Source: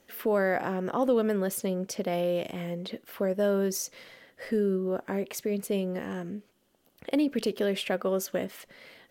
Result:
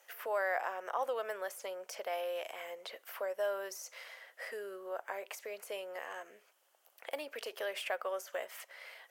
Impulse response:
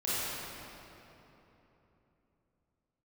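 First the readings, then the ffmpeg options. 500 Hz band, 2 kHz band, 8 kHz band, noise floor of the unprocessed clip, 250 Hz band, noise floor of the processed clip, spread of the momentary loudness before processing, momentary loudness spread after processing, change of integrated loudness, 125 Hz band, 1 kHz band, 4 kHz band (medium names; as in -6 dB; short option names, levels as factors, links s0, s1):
-10.0 dB, -3.0 dB, -11.0 dB, -66 dBFS, -28.0 dB, -70 dBFS, 13 LU, 11 LU, -10.5 dB, under -40 dB, -3.5 dB, -6.5 dB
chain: -filter_complex "[0:a]deesser=0.85,highpass=f=630:w=0.5412,highpass=f=630:w=1.3066,equalizer=f=3900:t=o:w=0.63:g=-6,asplit=2[s0][s1];[s1]acompressor=threshold=0.00447:ratio=6,volume=1[s2];[s0][s2]amix=inputs=2:normalize=0,volume=0.631"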